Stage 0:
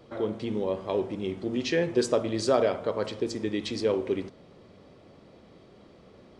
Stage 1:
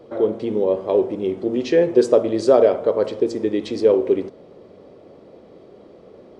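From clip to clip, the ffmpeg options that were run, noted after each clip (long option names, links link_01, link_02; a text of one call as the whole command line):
ffmpeg -i in.wav -af "equalizer=frequency=460:width_type=o:width=1.9:gain=12.5,volume=-1dB" out.wav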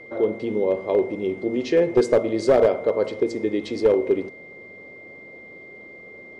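ffmpeg -i in.wav -af "aeval=exprs='clip(val(0),-1,0.355)':channel_layout=same,aeval=exprs='val(0)+0.0112*sin(2*PI*2100*n/s)':channel_layout=same,volume=-2.5dB" out.wav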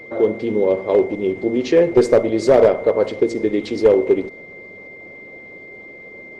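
ffmpeg -i in.wav -af "volume=5dB" -ar 48000 -c:a libopus -b:a 16k out.opus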